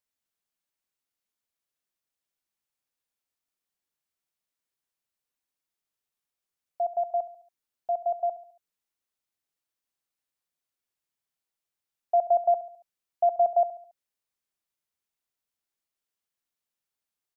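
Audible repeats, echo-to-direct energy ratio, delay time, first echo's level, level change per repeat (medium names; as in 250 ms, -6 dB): 3, -14.0 dB, 70 ms, -15.0 dB, -7.0 dB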